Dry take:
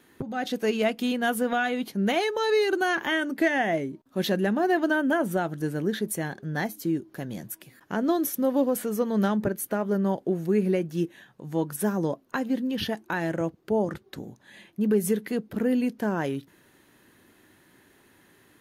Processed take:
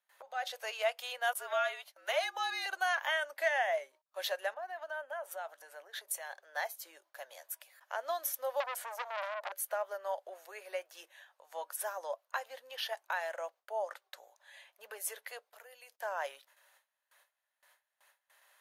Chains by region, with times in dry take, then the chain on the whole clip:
0:01.33–0:02.66: mains-hum notches 50/100/150/200/250/300/350/400 Hz + noise gate with hold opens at −25 dBFS, closes at −29 dBFS + frequency shifter −62 Hz
0:04.54–0:06.42: downward compressor 12 to 1, threshold −28 dBFS + multiband upward and downward expander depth 40%
0:08.60–0:09.52: high-shelf EQ 9,700 Hz −5.5 dB + saturating transformer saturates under 1,900 Hz
0:15.51–0:16.01: noise gate −43 dBFS, range −31 dB + high-shelf EQ 3,500 Hz +9.5 dB + downward compressor, threshold −35 dBFS
whole clip: Chebyshev high-pass filter 570 Hz, order 5; noise gate with hold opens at −51 dBFS; level −4.5 dB

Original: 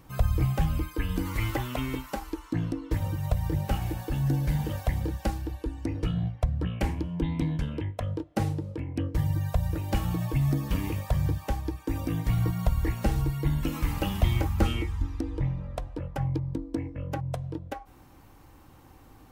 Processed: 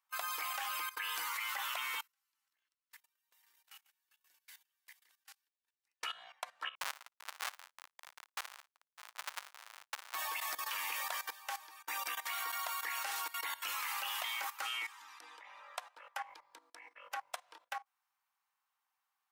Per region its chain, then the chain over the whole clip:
0:02.01–0:06.01: delay that plays each chunk backwards 298 ms, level −6.5 dB + guitar amp tone stack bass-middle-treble 6-0-2
0:06.75–0:10.15: comparator with hysteresis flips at −25 dBFS + downward compressor 3 to 1, threshold −33 dBFS + flutter between parallel walls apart 9.6 metres, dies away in 0.28 s
whole clip: noise gate −38 dBFS, range −25 dB; high-pass filter 990 Hz 24 dB per octave; output level in coarse steps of 16 dB; level +9 dB

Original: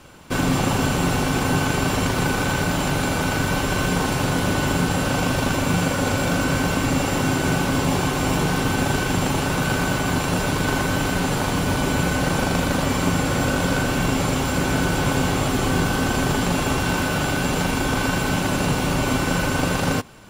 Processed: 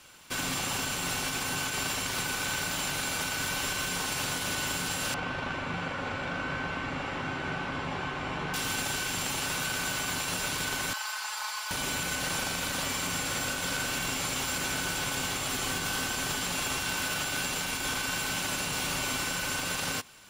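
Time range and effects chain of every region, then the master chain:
0:05.14–0:08.54: low-pass filter 2,000 Hz + double-tracking delay 13 ms −13 dB
0:10.93–0:11.71: four-pole ladder high-pass 810 Hz, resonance 50% + parametric band 4,800 Hz +7 dB 0.34 octaves + comb filter 4.7 ms, depth 85%
whole clip: tilt shelving filter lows −8.5 dB, about 1,100 Hz; brickwall limiter −13 dBFS; level −8.5 dB

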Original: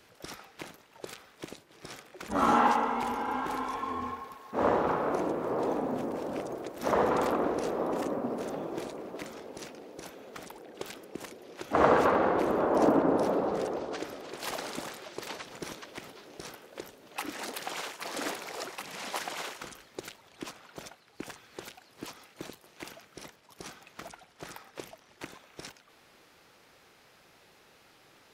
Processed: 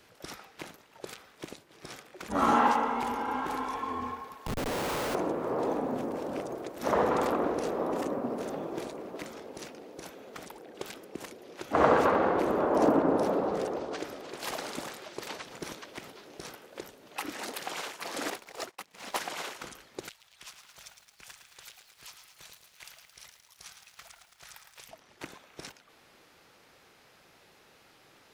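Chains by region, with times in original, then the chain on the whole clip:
0:04.46–0:05.15: volume swells 247 ms + comparator with hysteresis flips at −44.5 dBFS
0:18.30–0:19.17: downward expander −32 dBFS + leveller curve on the samples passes 2
0:20.09–0:24.89: guitar amp tone stack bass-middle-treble 10-0-10 + feedback echo at a low word length 110 ms, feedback 80%, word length 10 bits, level −7 dB
whole clip: no processing

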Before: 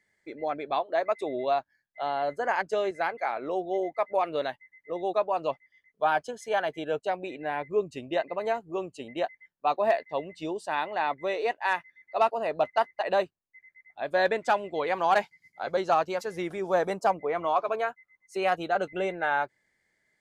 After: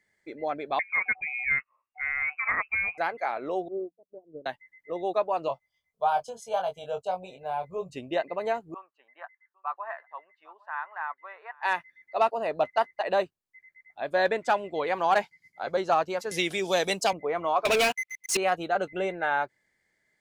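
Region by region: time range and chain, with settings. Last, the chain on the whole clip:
0:00.79–0:02.98: low-shelf EQ 240 Hz −7 dB + voice inversion scrambler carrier 2,800 Hz
0:03.68–0:04.46: inverse Chebyshev low-pass filter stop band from 1,100 Hz, stop band 50 dB + mains-hum notches 60/120/180 Hz + expander for the loud parts 2.5 to 1, over −50 dBFS
0:05.48–0:07.93: phaser with its sweep stopped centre 780 Hz, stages 4 + double-tracking delay 22 ms −5.5 dB
0:08.74–0:11.63: flat-topped band-pass 1,300 Hz, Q 1.8 + single-tap delay 803 ms −23.5 dB
0:16.31–0:17.13: high shelf with overshoot 2,000 Hz +13.5 dB, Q 1.5 + multiband upward and downward compressor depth 40%
0:17.65–0:18.37: high shelf with overshoot 1,900 Hz +10 dB, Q 3 + leveller curve on the samples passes 5 + downward compressor 1.5 to 1, threshold −29 dBFS
whole clip: no processing

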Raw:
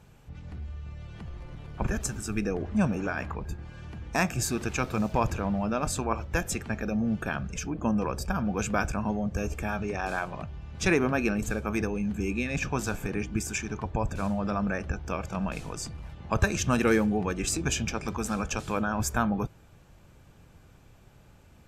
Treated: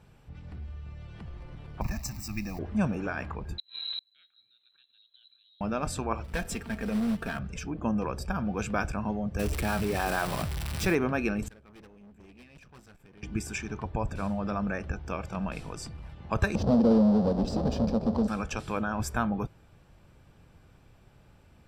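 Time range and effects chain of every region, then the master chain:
0:01.81–0:02.59: spike at every zero crossing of −32.5 dBFS + high-shelf EQ 5,800 Hz +7 dB + phaser with its sweep stopped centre 2,200 Hz, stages 8
0:03.58–0:05.61: low-shelf EQ 130 Hz +10.5 dB + gate with flip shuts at −26 dBFS, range −37 dB + voice inversion scrambler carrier 4,000 Hz
0:06.24–0:07.39: hard clipping −25 dBFS + comb filter 4.4 ms, depth 46% + floating-point word with a short mantissa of 2 bits
0:09.39–0:10.95: spike at every zero crossing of −20.5 dBFS + high-shelf EQ 2,700 Hz −8.5 dB + envelope flattener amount 50%
0:11.48–0:13.23: mu-law and A-law mismatch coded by mu + noise gate −26 dBFS, range −18 dB + tube saturation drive 47 dB, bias 0.75
0:16.55–0:18.28: each half-wave held at its own peak + drawn EQ curve 150 Hz 0 dB, 220 Hz +13 dB, 340 Hz −3 dB, 530 Hz +12 dB, 1,100 Hz −4 dB, 2,200 Hz −21 dB, 3,100 Hz −14 dB, 4,700 Hz −5 dB, 8,900 Hz −24 dB, 14,000 Hz −28 dB + downward compressor 2 to 1, threshold −22 dBFS
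whole clip: high-shelf EQ 11,000 Hz −8.5 dB; notch filter 6,600 Hz, Q 6.1; level −2 dB

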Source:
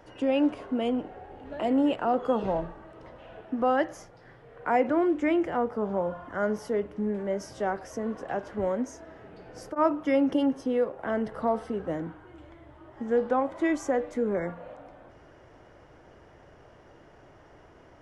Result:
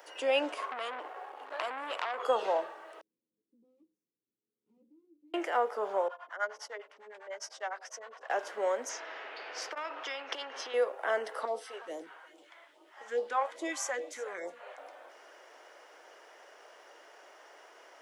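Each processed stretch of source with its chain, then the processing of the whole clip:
0:00.57–0:02.23: parametric band 1,100 Hz +13.5 dB 0.45 octaves + downward compressor 12 to 1, threshold −28 dBFS + saturating transformer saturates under 1,700 Hz
0:03.01–0:05.34: lower of the sound and its delayed copy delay 9.5 ms + inverse Chebyshev low-pass filter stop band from 620 Hz, stop band 60 dB
0:06.08–0:08.30: three-way crossover with the lows and the highs turned down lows −17 dB, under 570 Hz, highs −23 dB, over 7,000 Hz + two-band tremolo in antiphase 9.9 Hz, depth 100%, crossover 530 Hz
0:08.89–0:10.74: high-frequency loss of the air 220 metres + downward compressor, threshold −29 dBFS + every bin compressed towards the loudest bin 2 to 1
0:11.45–0:14.78: high-shelf EQ 4,700 Hz −4.5 dB + single-tap delay 359 ms −18.5 dB + all-pass phaser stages 2, 2.4 Hz, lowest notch 220–1,600 Hz
whole clip: high-pass filter 410 Hz 24 dB per octave; spectral tilt +3 dB per octave; level +1.5 dB

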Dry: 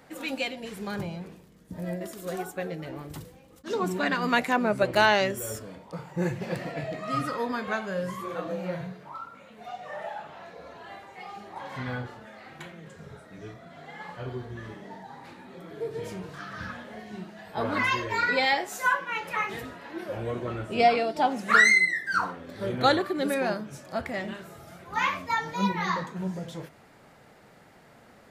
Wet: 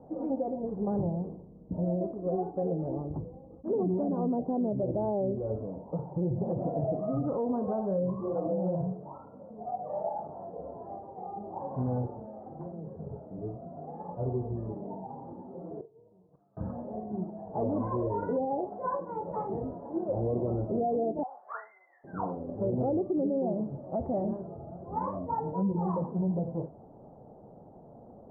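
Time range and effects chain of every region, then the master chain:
0:15.42–0:16.57: low-shelf EQ 440 Hz −4.5 dB + gate with flip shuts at −34 dBFS, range −26 dB + double-tracking delay 44 ms −13.5 dB
0:21.23–0:22.04: high-pass filter 1,000 Hz 24 dB per octave + dynamic equaliser 1,600 Hz, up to +5 dB, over −35 dBFS, Q 5.9
whole clip: Butterworth low-pass 820 Hz 36 dB per octave; treble cut that deepens with the level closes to 510 Hz, closed at −25 dBFS; brickwall limiter −27 dBFS; level +5 dB

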